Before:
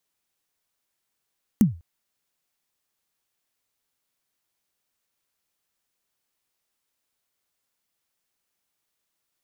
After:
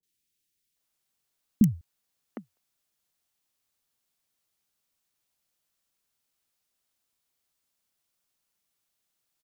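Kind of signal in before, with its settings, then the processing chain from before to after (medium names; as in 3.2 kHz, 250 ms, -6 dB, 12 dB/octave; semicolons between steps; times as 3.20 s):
kick drum length 0.20 s, from 240 Hz, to 83 Hz, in 138 ms, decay 0.31 s, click on, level -9 dB
peaking EQ 940 Hz -2.5 dB 0.56 oct; three bands offset in time lows, highs, mids 30/760 ms, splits 420/1900 Hz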